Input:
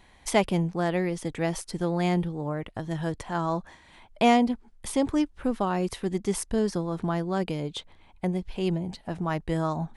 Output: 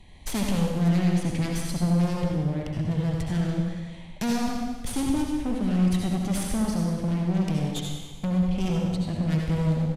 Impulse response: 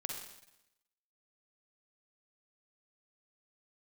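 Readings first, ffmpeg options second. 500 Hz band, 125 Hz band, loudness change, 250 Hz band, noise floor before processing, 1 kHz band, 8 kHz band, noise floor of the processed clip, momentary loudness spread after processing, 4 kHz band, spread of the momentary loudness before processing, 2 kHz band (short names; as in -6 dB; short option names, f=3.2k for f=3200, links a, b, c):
-5.5 dB, +6.5 dB, +1.5 dB, +3.0 dB, -56 dBFS, -7.0 dB, +1.5 dB, -41 dBFS, 7 LU, +0.5 dB, 8 LU, -3.5 dB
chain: -filter_complex "[0:a]bass=f=250:g=10,treble=f=4k:g=-6,bandreject=f=5.3k:w=18,acrossover=split=370|1700[a][b][c];[b]acompressor=threshold=-41dB:ratio=6[d];[c]aeval=exprs='0.15*(cos(1*acos(clip(val(0)/0.15,-1,1)))-cos(1*PI/2))+0.0668*(cos(3*acos(clip(val(0)/0.15,-1,1)))-cos(3*PI/2))+0.0335*(cos(7*acos(clip(val(0)/0.15,-1,1)))-cos(7*PI/2))+0.0668*(cos(8*acos(clip(val(0)/0.15,-1,1)))-cos(8*PI/2))':c=same[e];[a][d][e]amix=inputs=3:normalize=0,volume=24dB,asoftclip=hard,volume=-24dB,aresample=32000,aresample=44100[f];[1:a]atrim=start_sample=2205,asetrate=29106,aresample=44100[g];[f][g]afir=irnorm=-1:irlink=0"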